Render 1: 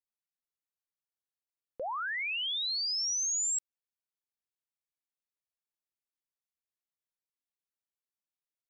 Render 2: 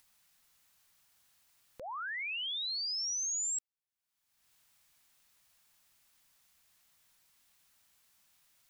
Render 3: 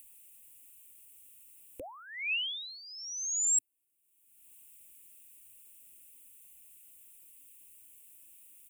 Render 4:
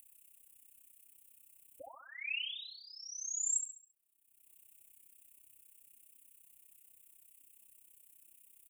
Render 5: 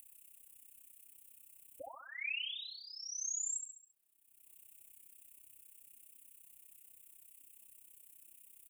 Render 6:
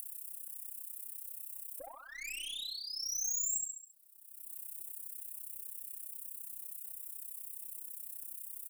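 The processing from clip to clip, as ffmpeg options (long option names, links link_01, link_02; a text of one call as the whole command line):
ffmpeg -i in.wav -af "equalizer=frequency=400:width_type=o:width=1.2:gain=-10.5,acompressor=mode=upward:threshold=-43dB:ratio=2.5,volume=-3.5dB" out.wav
ffmpeg -i in.wav -af "firequalizer=gain_entry='entry(110,0);entry(170,-24);entry(280,9);entry(410,1);entry(970,-15);entry(1500,-19);entry(2600,2);entry(4600,-20);entry(8400,9)':delay=0.05:min_phase=1,volume=6dB" out.wav
ffmpeg -i in.wav -af "tremolo=f=32:d=0.919,aecho=1:1:68|136|204|272|340:0.398|0.159|0.0637|0.0255|0.0102,volume=-2.5dB" out.wav
ffmpeg -i in.wav -af "alimiter=level_in=9dB:limit=-24dB:level=0:latency=1:release=413,volume=-9dB,volume=2.5dB" out.wav
ffmpeg -i in.wav -af "aeval=exprs='(tanh(112*val(0)+0.2)-tanh(0.2))/112':channel_layout=same,aexciter=amount=2.4:drive=6.3:freq=3900,volume=1.5dB" out.wav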